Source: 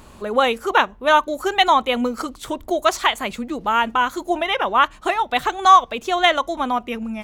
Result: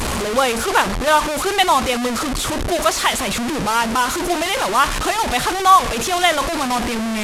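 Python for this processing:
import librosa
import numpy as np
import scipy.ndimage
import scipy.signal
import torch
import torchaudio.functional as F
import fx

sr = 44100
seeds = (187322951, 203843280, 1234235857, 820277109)

y = fx.delta_mod(x, sr, bps=64000, step_db=-15.5)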